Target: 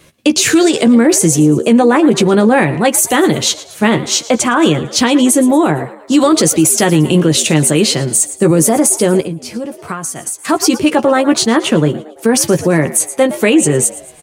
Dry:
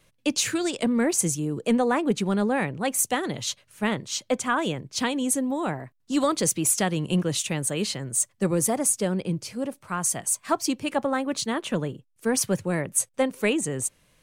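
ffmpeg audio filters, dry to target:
-filter_complex "[0:a]highpass=42,equalizer=f=340:w=3.6:g=7,asplit=2[a][b];[b]adelay=13,volume=-6.5dB[c];[a][c]amix=inputs=2:normalize=0,asplit=5[d][e][f][g][h];[e]adelay=113,afreqshift=80,volume=-19dB[i];[f]adelay=226,afreqshift=160,volume=-25.6dB[j];[g]adelay=339,afreqshift=240,volume=-32.1dB[k];[h]adelay=452,afreqshift=320,volume=-38.7dB[l];[d][i][j][k][l]amix=inputs=5:normalize=0,asettb=1/sr,asplit=3[m][n][o];[m]atrim=end=9.204[p];[n]atrim=start=9.2:end=10.45,asetpts=PTS-STARTPTS,afade=t=in:d=0.004:c=qsin,afade=t=out:st=1.246:d=0.004:c=qsin,acompressor=threshold=-34dB:ratio=16[q];[o]atrim=start=10.446[r];[p][q]acrossfade=d=0.004:c1=hsin:c2=qsin[s];[s][r]acrossfade=d=0.004:c1=qsin:c2=hsin,alimiter=level_in=16.5dB:limit=-1dB:release=50:level=0:latency=1,volume=-1dB"

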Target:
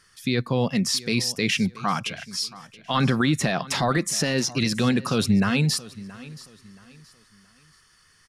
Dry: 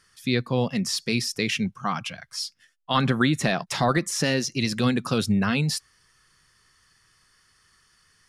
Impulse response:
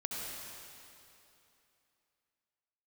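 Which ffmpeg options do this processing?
-filter_complex "[0:a]alimiter=limit=-14.5dB:level=0:latency=1:release=14,asplit=2[a][b];[b]aecho=0:1:675|1350|2025:0.112|0.0359|0.0115[c];[a][c]amix=inputs=2:normalize=0,volume=3dB"

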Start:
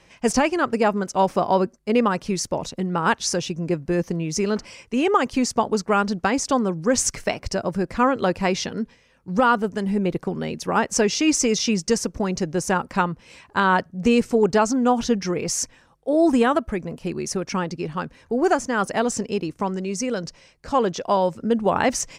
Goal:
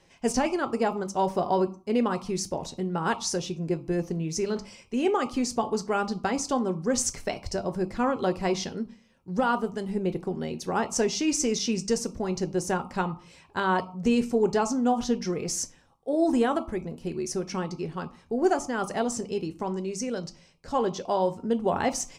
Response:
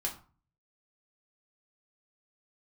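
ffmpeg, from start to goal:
-filter_complex "[0:a]asplit=2[a][b];[b]asuperstop=centerf=1700:order=12:qfactor=2.1[c];[1:a]atrim=start_sample=2205[d];[c][d]afir=irnorm=-1:irlink=0,volume=-6dB[e];[a][e]amix=inputs=2:normalize=0,volume=-8.5dB"

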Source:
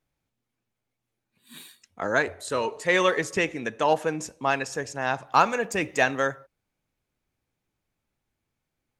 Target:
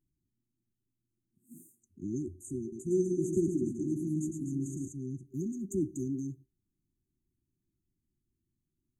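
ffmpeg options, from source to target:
-filter_complex "[0:a]asettb=1/sr,asplit=3[a][b][c];[a]atrim=end=2.614[d];[b]atrim=start=2.61:end=4.88,asetpts=PTS-STARTPTS,afade=t=in:d=0.004:c=qsin,afade=t=out:st=2.266:d=0.004:c=qsin,aecho=1:1:110|247.5|419.4|634.2|902.8:0.631|0.398|0.251|0.158|0.1,atrim=end_sample=100107[e];[c]atrim=start=4.876[f];[d][e]acrossfade=d=0.004:c1=hsin:c2=qsin[g];[g][f]acrossfade=d=0.004:c1=qsin:c2=hsin,afftfilt=real='re*(1-between(b*sr/4096,390,6000))':imag='im*(1-between(b*sr/4096,390,6000))':win_size=4096:overlap=0.75,highshelf=f=3.4k:t=q:w=1.5:g=-8"

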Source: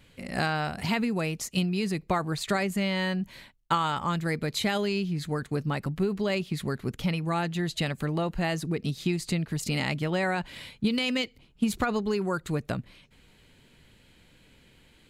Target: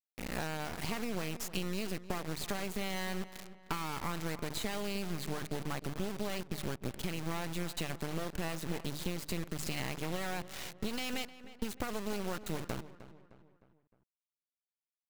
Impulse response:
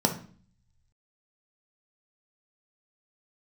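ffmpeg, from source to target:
-filter_complex "[0:a]bandreject=f=50:t=h:w=6,bandreject=f=100:t=h:w=6,bandreject=f=150:t=h:w=6,acompressor=threshold=-33dB:ratio=5,acrusher=bits=4:dc=4:mix=0:aa=0.000001,asplit=2[a][b];[b]adelay=307,lowpass=f=2.9k:p=1,volume=-14.5dB,asplit=2[c][d];[d]adelay=307,lowpass=f=2.9k:p=1,volume=0.47,asplit=2[e][f];[f]adelay=307,lowpass=f=2.9k:p=1,volume=0.47,asplit=2[g][h];[h]adelay=307,lowpass=f=2.9k:p=1,volume=0.47[i];[c][e][g][i]amix=inputs=4:normalize=0[j];[a][j]amix=inputs=2:normalize=0,volume=1dB"

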